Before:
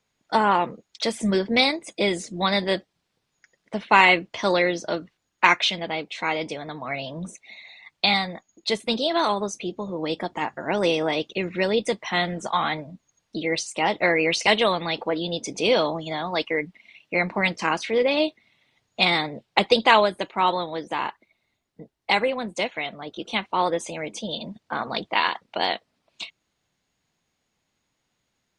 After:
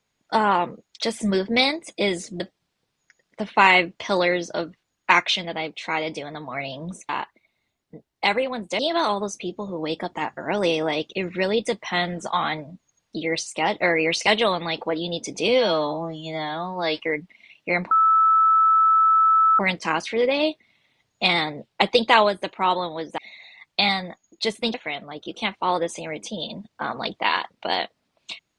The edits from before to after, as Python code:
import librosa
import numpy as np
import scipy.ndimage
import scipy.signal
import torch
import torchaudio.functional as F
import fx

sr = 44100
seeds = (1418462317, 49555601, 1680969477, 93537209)

y = fx.edit(x, sr, fx.cut(start_s=2.4, length_s=0.34),
    fx.swap(start_s=7.43, length_s=1.56, other_s=20.95, other_length_s=1.7),
    fx.stretch_span(start_s=15.68, length_s=0.75, factor=2.0),
    fx.insert_tone(at_s=17.36, length_s=1.68, hz=1310.0, db=-13.5), tone=tone)